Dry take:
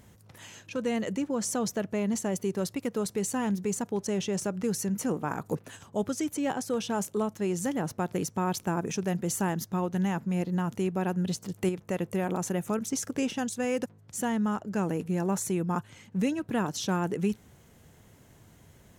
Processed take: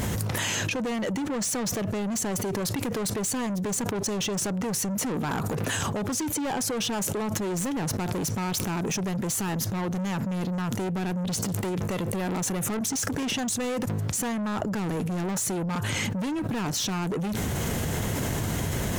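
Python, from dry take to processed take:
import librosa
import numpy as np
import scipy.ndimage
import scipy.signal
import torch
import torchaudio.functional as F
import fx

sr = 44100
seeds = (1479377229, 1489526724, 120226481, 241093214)

y = 10.0 ** (-35.0 / 20.0) * np.tanh(x / 10.0 ** (-35.0 / 20.0))
y = fx.env_flatten(y, sr, amount_pct=100)
y = y * librosa.db_to_amplitude(7.5)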